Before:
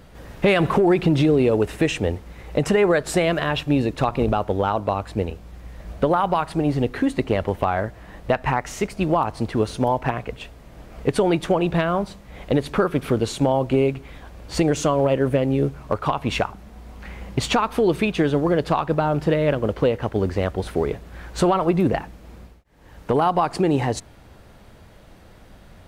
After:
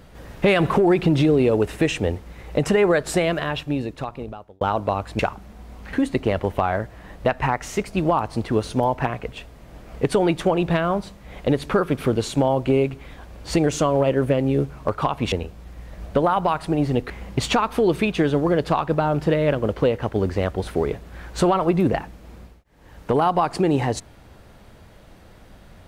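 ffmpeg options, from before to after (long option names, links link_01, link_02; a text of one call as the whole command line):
ffmpeg -i in.wav -filter_complex "[0:a]asplit=6[link_01][link_02][link_03][link_04][link_05][link_06];[link_01]atrim=end=4.61,asetpts=PTS-STARTPTS,afade=type=out:start_time=3.08:duration=1.53[link_07];[link_02]atrim=start=4.61:end=5.192,asetpts=PTS-STARTPTS,afade=type=in:duration=0.004:curve=hsin[link_08];[link_03]atrim=start=16.358:end=17.102[link_09];[link_04]atrim=start=6.968:end=16.362[link_10];[link_05]atrim=start=5.188:end=6.972[link_11];[link_06]atrim=start=17.098[link_12];[link_07][link_08]concat=n=2:v=0:a=1[link_13];[link_13][link_09]acrossfade=duration=0.004:curve1=hsin:curve2=hsin[link_14];[link_14][link_10]acrossfade=duration=0.004:curve1=hsin:curve2=hsin[link_15];[link_15][link_11]acrossfade=duration=0.004:curve1=hsin:curve2=hsin[link_16];[link_16][link_12]acrossfade=duration=0.004:curve1=hsin:curve2=hsin" out.wav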